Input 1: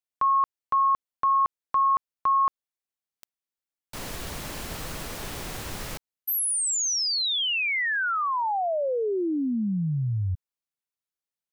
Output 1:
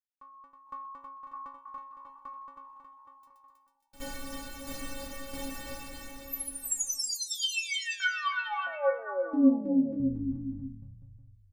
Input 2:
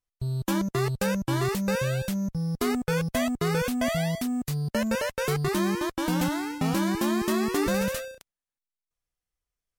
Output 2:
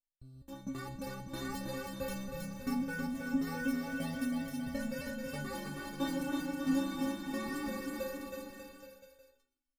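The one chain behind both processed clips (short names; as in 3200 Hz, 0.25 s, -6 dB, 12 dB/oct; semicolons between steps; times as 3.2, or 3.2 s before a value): limiter -24 dBFS; notch 910 Hz, Q 22; AGC gain up to 11 dB; low shelf 430 Hz +8 dB; frequency-shifting echo 0.125 s, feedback 44%, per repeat -68 Hz, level -14 dB; tremolo saw down 1.5 Hz, depth 85%; metallic resonator 270 Hz, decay 0.41 s, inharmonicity 0.008; bouncing-ball echo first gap 0.32 s, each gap 0.85×, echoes 5; added harmonics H 2 -39 dB, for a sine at -10 dBFS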